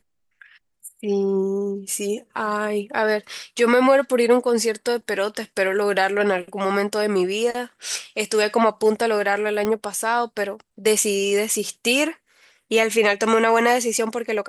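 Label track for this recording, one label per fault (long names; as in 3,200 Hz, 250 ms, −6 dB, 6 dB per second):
9.650000	9.650000	click −10 dBFS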